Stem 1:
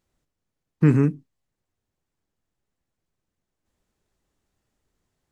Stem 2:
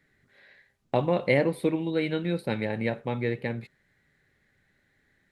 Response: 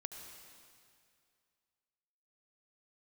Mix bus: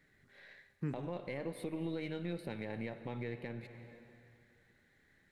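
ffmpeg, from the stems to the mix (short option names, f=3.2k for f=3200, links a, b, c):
-filter_complex "[0:a]volume=-18.5dB[a];[1:a]aeval=exprs='if(lt(val(0),0),0.708*val(0),val(0))':c=same,acompressor=threshold=-26dB:ratio=6,volume=-3dB,asplit=2[b][c];[c]volume=-4dB[d];[2:a]atrim=start_sample=2205[e];[d][e]afir=irnorm=-1:irlink=0[f];[a][b][f]amix=inputs=3:normalize=0,alimiter=level_in=5dB:limit=-24dB:level=0:latency=1:release=382,volume=-5dB"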